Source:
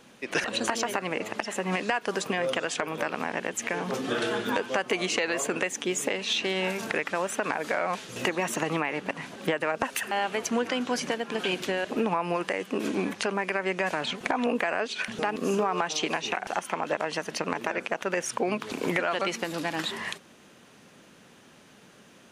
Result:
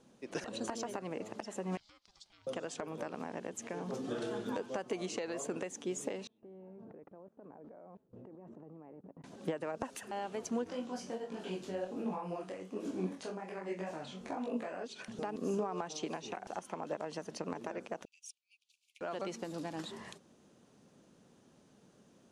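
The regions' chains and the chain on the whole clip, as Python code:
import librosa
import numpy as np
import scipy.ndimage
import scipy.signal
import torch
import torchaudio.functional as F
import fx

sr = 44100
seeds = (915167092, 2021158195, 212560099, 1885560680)

y = fx.chain(x, sr, fx.bandpass_q(hz=4300.0, q=3.1),
    fx.ring_mod(carrier_hz=420.0), at=(1.77, 2.47))
y = fx.chain(y, sr, fx.bessel_lowpass(hz=570.0, order=2),
    fx.level_steps(step_db=22), at=(6.27, 9.24))
y = fx.chain(y, sr, fx.room_flutter(wall_m=3.7, rt60_s=0.24),
    fx.detune_double(cents=45), at=(10.64, 14.84))
y = fx.chain(y, sr, fx.steep_highpass(hz=2400.0, slope=96),
    fx.peak_eq(hz=7500.0, db=-3.0, octaves=0.76),
    fx.upward_expand(threshold_db=-48.0, expansion=2.5), at=(18.05, 19.01))
y = scipy.signal.sosfilt(scipy.signal.butter(2, 8000.0, 'lowpass', fs=sr, output='sos'), y)
y = fx.peak_eq(y, sr, hz=2200.0, db=-13.5, octaves=2.2)
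y = y * 10.0 ** (-6.5 / 20.0)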